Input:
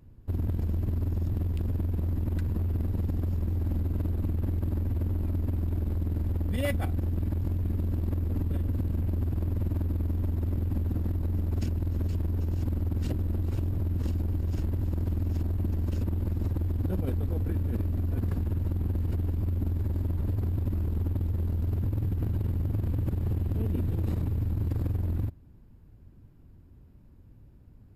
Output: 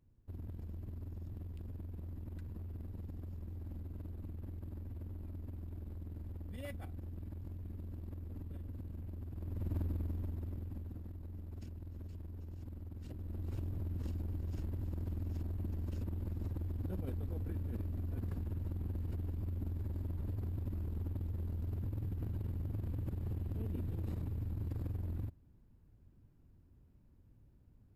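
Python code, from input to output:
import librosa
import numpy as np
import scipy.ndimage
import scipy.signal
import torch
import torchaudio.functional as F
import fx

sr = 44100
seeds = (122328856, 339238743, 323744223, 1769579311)

y = fx.gain(x, sr, db=fx.line((9.3, -16.5), (9.77, -7.0), (11.07, -18.0), (13.04, -18.0), (13.51, -10.5)))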